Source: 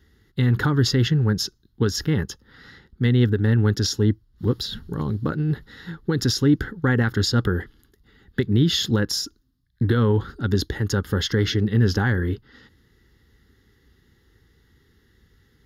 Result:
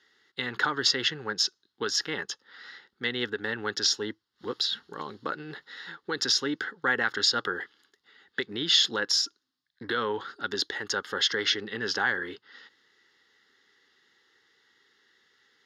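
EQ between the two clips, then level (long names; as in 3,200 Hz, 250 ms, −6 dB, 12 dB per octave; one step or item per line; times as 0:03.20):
high-pass filter 630 Hz 12 dB per octave
high-frequency loss of the air 130 metres
high-shelf EQ 3,000 Hz +10 dB
0.0 dB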